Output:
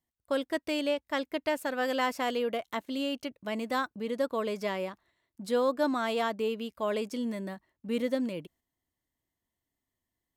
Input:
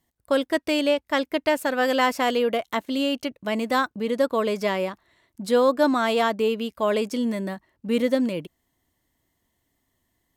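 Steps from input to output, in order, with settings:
noise gate −53 dBFS, range −6 dB
level −8 dB

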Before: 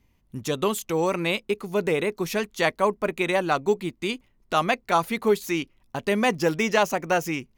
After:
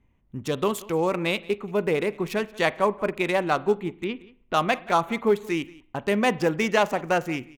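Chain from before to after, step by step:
adaptive Wiener filter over 9 samples
0:04.04–0:04.54: high-frequency loss of the air 310 metres
single-tap delay 179 ms −21.5 dB
on a send at −18 dB: convolution reverb RT60 0.55 s, pre-delay 39 ms

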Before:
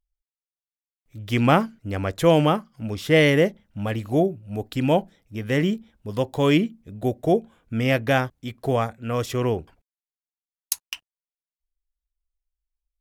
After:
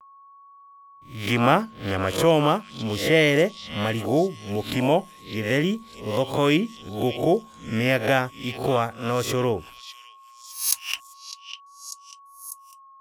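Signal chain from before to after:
peak hold with a rise ahead of every peak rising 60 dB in 0.38 s
noise gate with hold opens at −51 dBFS
low-shelf EQ 250 Hz −5 dB
in parallel at +3 dB: downward compressor, threshold −28 dBFS, peak gain reduction 15.5 dB
on the sum: steady tone 1,100 Hz −44 dBFS
on a send: echo through a band-pass that steps 602 ms, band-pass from 3,800 Hz, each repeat 0.7 octaves, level −7 dB
on the sum: pitch vibrato 0.36 Hz 28 cents
level −3 dB

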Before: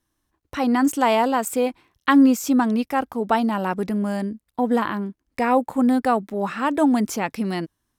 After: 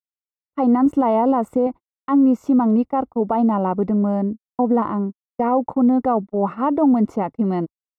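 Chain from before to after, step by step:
one scale factor per block 7 bits
0:00.86–0:01.67: low-shelf EQ 220 Hz +7.5 dB
noise gate −29 dBFS, range −60 dB
brickwall limiter −14 dBFS, peak gain reduction 9.5 dB
Savitzky-Golay smoothing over 65 samples
level +5 dB

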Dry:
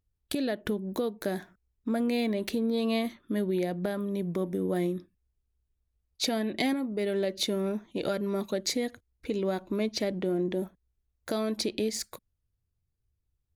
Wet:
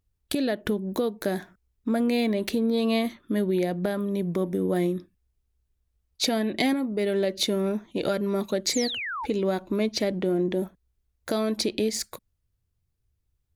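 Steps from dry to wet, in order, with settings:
sound drawn into the spectrogram fall, 0:08.73–0:09.26, 800–7,900 Hz −36 dBFS
level +4 dB

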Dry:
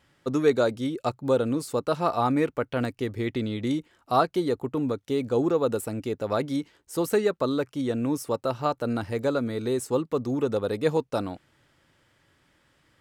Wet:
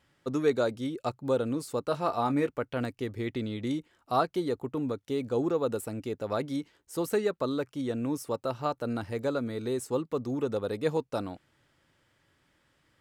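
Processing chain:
0:01.88–0:02.47: double-tracking delay 21 ms −10 dB
level −4.5 dB

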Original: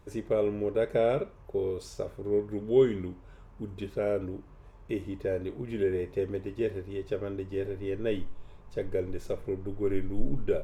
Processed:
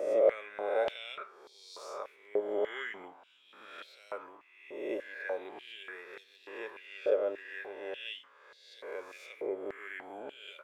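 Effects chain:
peak hold with a rise ahead of every peak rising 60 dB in 1.08 s
high-shelf EQ 3,600 Hz −9.5 dB
high-pass on a step sequencer 3.4 Hz 590–4,000 Hz
level −2.5 dB

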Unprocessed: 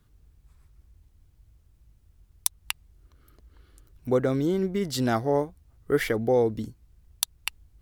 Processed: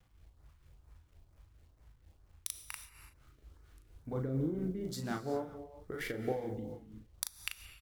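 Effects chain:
adaptive Wiener filter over 9 samples
0:04.13–0:04.84: spectral tilt −2.5 dB per octave
downward compressor 3 to 1, threshold −30 dBFS, peak gain reduction 11.5 dB
bit reduction 11 bits
auto-filter notch saw up 2.2 Hz 280–3,800 Hz
double-tracking delay 38 ms −4 dB
reverb whose tail is shaped and stops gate 400 ms flat, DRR 9.5 dB
amplitude tremolo 4.3 Hz, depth 52%
level −3.5 dB

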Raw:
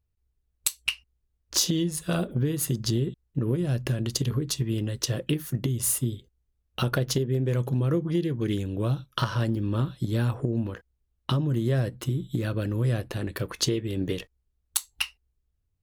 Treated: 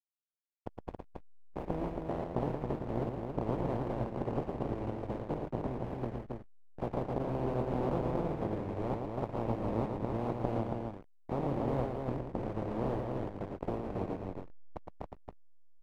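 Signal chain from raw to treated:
compressing power law on the bin magnitudes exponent 0.14
low-pass that shuts in the quiet parts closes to 360 Hz, open at −21.5 dBFS
inverse Chebyshev low-pass filter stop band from 2,200 Hz, stop band 50 dB
slack as between gear wheels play −39.5 dBFS
on a send: loudspeakers that aren't time-aligned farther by 39 metres −5 dB, 94 metres −4 dB

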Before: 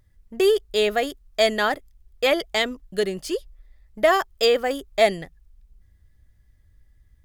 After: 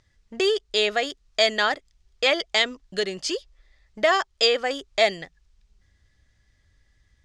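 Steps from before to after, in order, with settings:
low-pass filter 6,500 Hz 24 dB per octave
in parallel at +2 dB: downward compressor, threshold −32 dBFS, peak gain reduction 19 dB
on the sum: spectral tilt +2.5 dB per octave
level −3 dB

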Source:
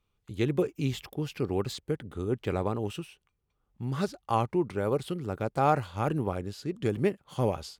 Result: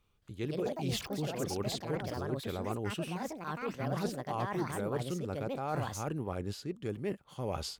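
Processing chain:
reversed playback
downward compressor 6 to 1, threshold −37 dBFS, peak gain reduction 17 dB
reversed playback
delay with pitch and tempo change per echo 220 ms, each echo +5 semitones, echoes 2
level +3.5 dB

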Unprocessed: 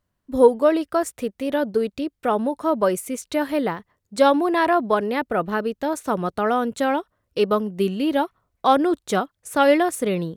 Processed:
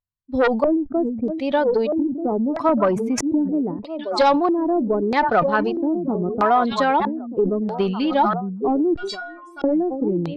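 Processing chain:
spectral dynamics exaggerated over time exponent 1.5
0:04.81–0:05.40: leveller curve on the samples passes 1
echo through a band-pass that steps 618 ms, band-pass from 150 Hz, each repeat 1.4 octaves, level −8 dB
harmonic generator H 4 −21 dB, 7 −35 dB, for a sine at −4 dBFS
0:02.69–0:03.52: octave-band graphic EQ 125/250/4,000/8,000 Hz +11/+7/−10/−9 dB
sine wavefolder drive 7 dB, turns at −4 dBFS
0:08.96–0:09.64: stiff-string resonator 340 Hz, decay 0.48 s, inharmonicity 0.008
auto-filter low-pass square 0.78 Hz 330–4,400 Hz
downward compressor 6 to 1, threshold −15 dBFS, peak gain reduction 12 dB
parametric band 870 Hz +11 dB 1.7 octaves
level that may fall only so fast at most 62 dB per second
level −6 dB

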